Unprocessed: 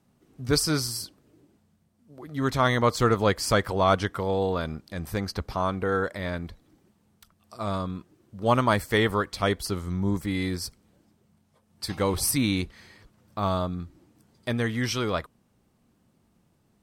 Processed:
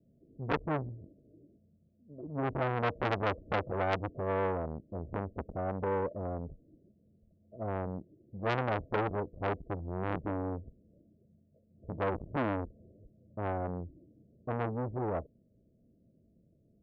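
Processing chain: Chebyshev low-pass 670 Hz, order 10; core saturation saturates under 1800 Hz

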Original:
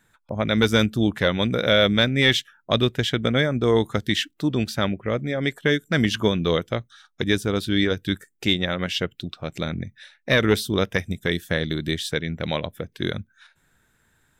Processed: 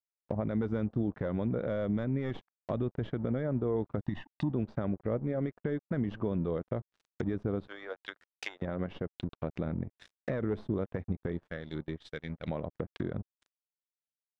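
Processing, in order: tracing distortion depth 0.038 ms; 7.67–8.62 HPF 610 Hz 24 dB/oct; crossover distortion -41.5 dBFS; 4.05–4.52 comb 1.1 ms, depth 81%; limiter -16 dBFS, peak gain reduction 11 dB; compressor 2:1, threshold -31 dBFS, peak gain reduction 6 dB; 11.49–12.47 gate -31 dBFS, range -31 dB; treble ducked by the level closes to 880 Hz, closed at -31.5 dBFS

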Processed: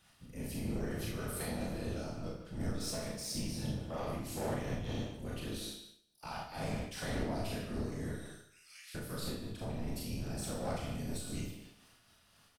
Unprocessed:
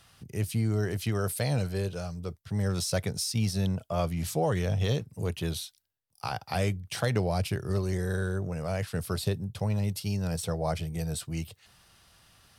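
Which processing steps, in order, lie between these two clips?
8.12–8.95 inverse Chebyshev high-pass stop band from 400 Hz, stop band 80 dB; whisperiser; soft clip -25.5 dBFS, distortion -12 dB; speakerphone echo 0.15 s, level -6 dB; Schroeder reverb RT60 0.68 s, combs from 26 ms, DRR -3 dB; noise-modulated level, depth 60%; gain -7.5 dB

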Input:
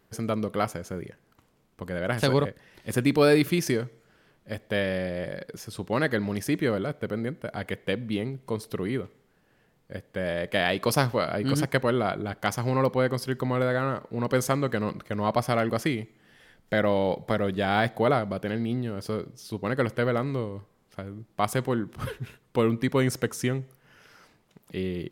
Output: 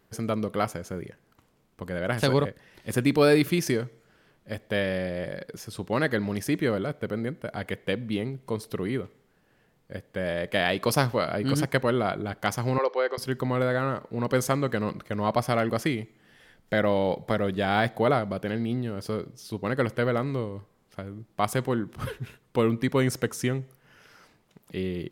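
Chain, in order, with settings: 12.78–13.18 elliptic band-pass 400–5600 Hz

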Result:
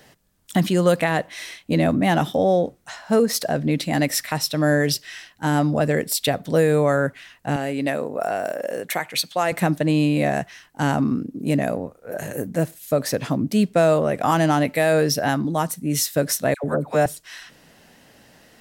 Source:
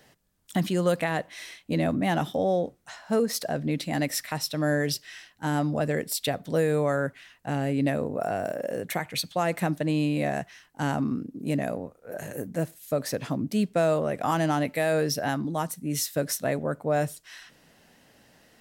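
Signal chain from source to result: 7.56–9.52 HPF 490 Hz 6 dB/oct; 16.54–17.06 dispersion lows, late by 99 ms, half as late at 1000 Hz; gain +6.5 dB

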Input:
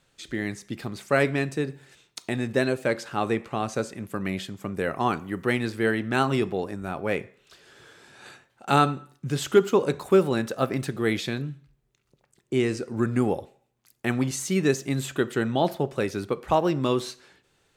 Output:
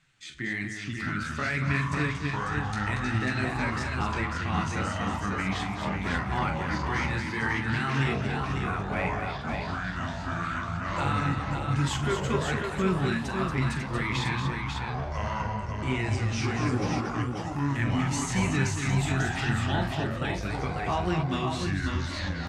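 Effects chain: ten-band EQ 125 Hz +4 dB, 500 Hz -12 dB, 2000 Hz +8 dB, 8000 Hz +5 dB; limiter -16 dBFS, peak gain reduction 10.5 dB; flange 1.5 Hz, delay 5.7 ms, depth 9.6 ms, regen -6%; tempo 0.79×; echoes that change speed 0.484 s, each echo -5 st, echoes 3; air absorption 55 m; on a send: tapped delay 43/233/545 ms -9.5/-7/-5 dB

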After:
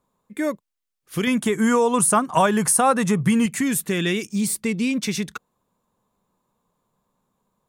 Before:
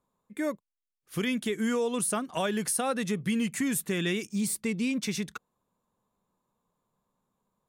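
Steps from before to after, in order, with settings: 1.27–3.46 graphic EQ 125/1000/4000/8000 Hz +10/+11/-5/+6 dB; gain +6.5 dB

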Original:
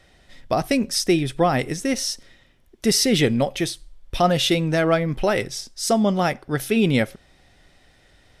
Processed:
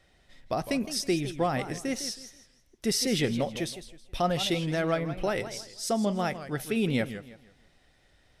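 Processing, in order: warbling echo 0.161 s, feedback 31%, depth 193 cents, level -12 dB; gain -8.5 dB

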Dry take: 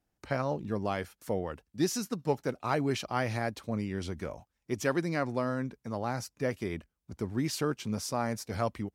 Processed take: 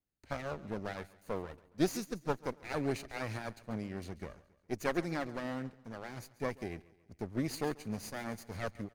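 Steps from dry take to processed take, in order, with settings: minimum comb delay 0.46 ms; feedback echo 0.138 s, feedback 49%, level -15.5 dB; upward expander 1.5:1, over -46 dBFS

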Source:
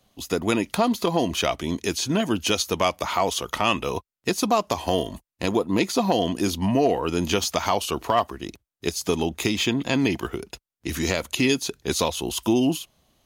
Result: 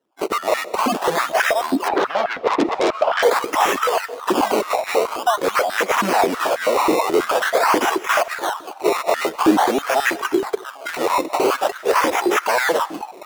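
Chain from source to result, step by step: per-bin expansion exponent 1.5; in parallel at -4 dB: soft clip -21.5 dBFS, distortion -11 dB; on the sum: high shelf 5300 Hz +4 dB; delay with a stepping band-pass 0.754 s, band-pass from 950 Hz, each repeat 0.7 oct, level -10.5 dB; decimation with a swept rate 19×, swing 100% 0.47 Hz; 1.88–3.23 air absorption 480 m; sine folder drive 14 dB, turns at -8.5 dBFS; on a send at -17 dB: reverb RT60 0.70 s, pre-delay 0.1 s; on the sum: stepped high-pass 9.3 Hz 310–1600 Hz; gain -8.5 dB

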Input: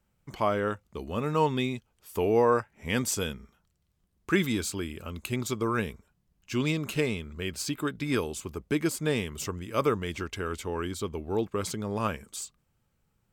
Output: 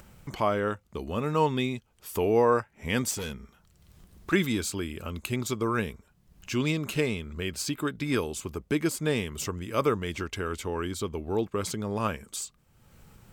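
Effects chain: in parallel at +1 dB: upward compressor, threshold -28 dBFS; 3.11–4.33 on the sum: hard clip -25 dBFS, distortion -24 dB; gain -6 dB

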